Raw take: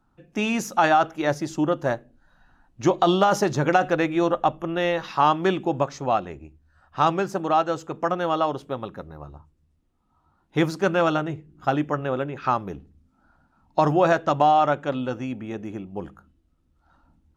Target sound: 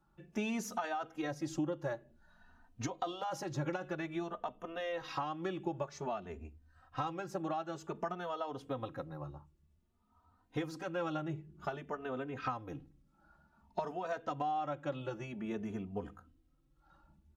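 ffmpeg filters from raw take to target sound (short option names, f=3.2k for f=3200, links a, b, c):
-filter_complex "[0:a]acompressor=threshold=-29dB:ratio=10,asplit=2[a][b];[b]adelay=3.1,afreqshift=0.53[c];[a][c]amix=inputs=2:normalize=1,volume=-2dB"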